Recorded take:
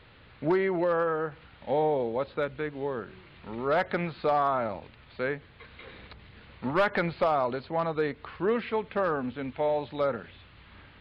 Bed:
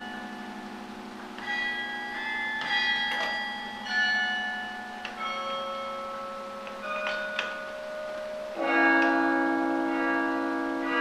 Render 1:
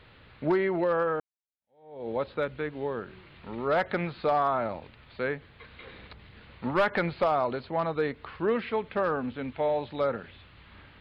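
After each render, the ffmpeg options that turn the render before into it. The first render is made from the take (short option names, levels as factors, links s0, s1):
-filter_complex "[0:a]asplit=2[s0][s1];[s0]atrim=end=1.2,asetpts=PTS-STARTPTS,afade=t=out:st=1.196:d=0.004:c=hsin[s2];[s1]atrim=start=1.2,asetpts=PTS-STARTPTS,afade=t=in:d=0.9:c=exp[s3];[s2][s3]concat=n=2:v=0:a=1"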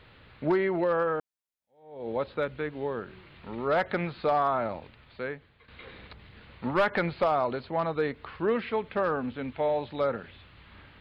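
-filter_complex "[0:a]asplit=2[s0][s1];[s0]atrim=end=5.68,asetpts=PTS-STARTPTS,afade=t=out:st=4.79:d=0.89:silence=0.266073[s2];[s1]atrim=start=5.68,asetpts=PTS-STARTPTS,afade=t=in:d=0.004:c=hsin:silence=0.266073[s3];[s2][s3]concat=n=2:v=0:a=1"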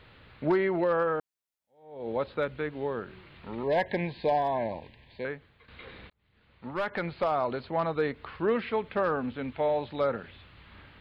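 -filter_complex "[0:a]asettb=1/sr,asplit=3[s0][s1][s2];[s0]atrim=end=3.634[s3];[s1]atrim=start=3.63:end=5.25,asetpts=PTS-STARTPTS,afade=t=in:d=0.004:c=qsin,afade=t=out:st=1.616:d=0.004:c=qsin,asuperstop=centerf=1300:order=20:qfactor=2.6[s4];[s2]atrim=start=5.246[s5];[s3][s4]acrossfade=d=0.004:c1=hsin:c2=qsin[s6];[s6][s5]acrossfade=d=0.004:c1=qsin:c2=hsin,asplit=2[s7][s8];[s7]atrim=end=6.1,asetpts=PTS-STARTPTS,afade=t=out:st=6.096:d=0.004:c=hsin[s9];[s8]atrim=start=6.1,asetpts=PTS-STARTPTS,afade=t=in:d=1.56[s10];[s9][s10]concat=n=2:v=0:a=1"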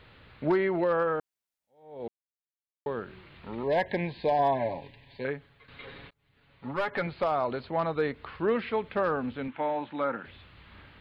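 -filter_complex "[0:a]asettb=1/sr,asplit=3[s0][s1][s2];[s0]atrim=end=4.384[s3];[s1]atrim=start=4.38:end=7.07,asetpts=PTS-STARTPTS,afade=t=in:d=0.004:c=qsin,afade=t=out:st=2.686:d=0.004:c=qsin,aecho=1:1:7.2:0.65,atrim=end_sample=118629[s4];[s2]atrim=start=7.066[s5];[s3][s4]acrossfade=d=0.004:c1=hsin:c2=qsin[s6];[s6][s5]acrossfade=d=0.004:c1=qsin:c2=hsin,asettb=1/sr,asplit=3[s7][s8][s9];[s7]atrim=end=9.484[s10];[s8]atrim=start=9.48:end=10.25,asetpts=PTS-STARTPTS,afade=t=in:d=0.004:c=qsin,afade=t=out:st=0.766:d=0.004:c=qsin,highpass=200,equalizer=f=290:t=q:w=4:g=5,equalizer=f=420:t=q:w=4:g=-8,equalizer=f=630:t=q:w=4:g=-5,equalizer=f=920:t=q:w=4:g=4,equalizer=f=1500:t=q:w=4:g=4,lowpass=f=3200:w=0.5412,lowpass=f=3200:w=1.3066[s11];[s9]atrim=start=10.246[s12];[s10][s11]acrossfade=d=0.004:c1=hsin:c2=qsin[s13];[s13][s12]acrossfade=d=0.004:c1=qsin:c2=hsin,asplit=3[s14][s15][s16];[s14]atrim=end=2.08,asetpts=PTS-STARTPTS,afade=t=out:st=2.076:d=0.004:c=hsin[s17];[s15]atrim=start=2.08:end=2.86,asetpts=PTS-STARTPTS,volume=0[s18];[s16]atrim=start=2.86,asetpts=PTS-STARTPTS,afade=t=in:d=0.004:c=hsin[s19];[s17][s18][s19]concat=n=3:v=0:a=1"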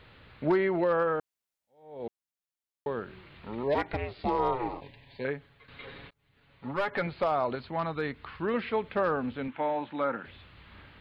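-filter_complex "[0:a]asplit=3[s0][s1][s2];[s0]afade=t=out:st=3.74:d=0.02[s3];[s1]aeval=exprs='val(0)*sin(2*PI*250*n/s)':c=same,afade=t=in:st=3.74:d=0.02,afade=t=out:st=4.8:d=0.02[s4];[s2]afade=t=in:st=4.8:d=0.02[s5];[s3][s4][s5]amix=inputs=3:normalize=0,asettb=1/sr,asplit=3[s6][s7][s8];[s6]atrim=end=7.554[s9];[s7]atrim=start=7.55:end=8.54,asetpts=PTS-STARTPTS,afade=t=in:d=0.004:c=qsin,afade=t=out:st=0.986:d=0.004:c=qsin,equalizer=f=510:t=o:w=1.1:g=-6.5[s10];[s8]atrim=start=8.536[s11];[s9][s10]acrossfade=d=0.004:c1=hsin:c2=qsin[s12];[s12][s11]acrossfade=d=0.004:c1=qsin:c2=hsin"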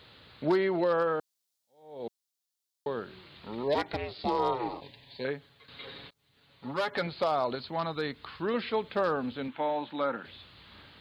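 -af "highpass=f=130:p=1,highshelf=f=3100:t=q:w=1.5:g=7.5"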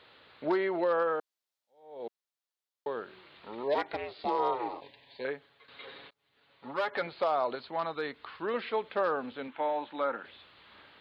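-af "bass=f=250:g=-14,treble=f=4000:g=-12"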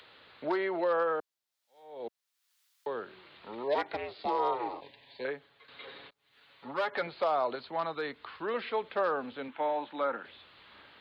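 -filter_complex "[0:a]acrossover=split=110|350|1100[s0][s1][s2][s3];[s1]alimiter=level_in=6.31:limit=0.0631:level=0:latency=1,volume=0.158[s4];[s3]acompressor=mode=upward:threshold=0.002:ratio=2.5[s5];[s0][s4][s2][s5]amix=inputs=4:normalize=0"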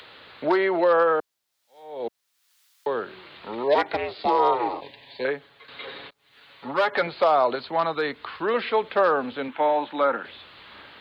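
-af "volume=2.99"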